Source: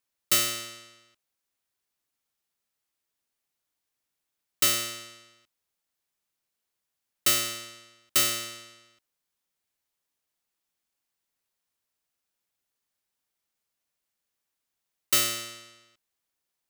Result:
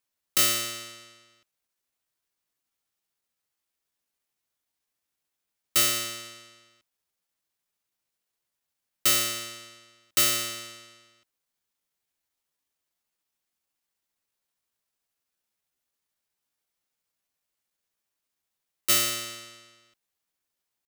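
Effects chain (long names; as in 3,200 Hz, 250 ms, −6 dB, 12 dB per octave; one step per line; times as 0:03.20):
tempo change 0.8×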